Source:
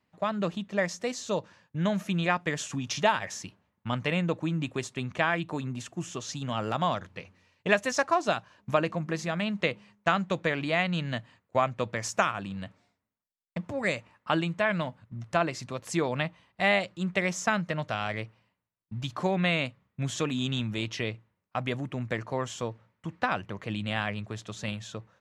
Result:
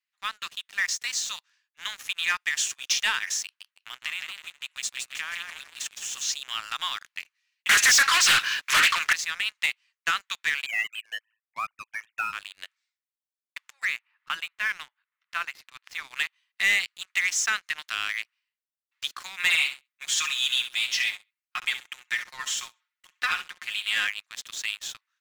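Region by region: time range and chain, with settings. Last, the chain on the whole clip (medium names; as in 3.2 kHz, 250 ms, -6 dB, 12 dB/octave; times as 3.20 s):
3.44–6.32 s: compression, threshold -31 dBFS + modulated delay 160 ms, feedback 43%, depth 152 cents, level -5 dB
7.69–9.13 s: high-pass 1.3 kHz + overdrive pedal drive 36 dB, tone 2.9 kHz, clips at -10.5 dBFS + loudspeaker Doppler distortion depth 0.49 ms
10.66–12.33 s: formants replaced by sine waves + ring modulator 55 Hz
13.85–16.11 s: distance through air 330 m + upward compressor, threshold -42 dBFS
19.38–24.07 s: comb 5.6 ms, depth 70% + feedback delay 66 ms, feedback 30%, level -11.5 dB
whole clip: Bessel high-pass 2.2 kHz, order 6; waveshaping leveller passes 3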